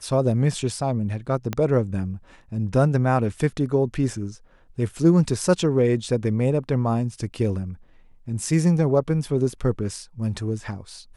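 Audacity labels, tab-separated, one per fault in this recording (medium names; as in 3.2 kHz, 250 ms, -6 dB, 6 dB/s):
1.530000	1.530000	pop -12 dBFS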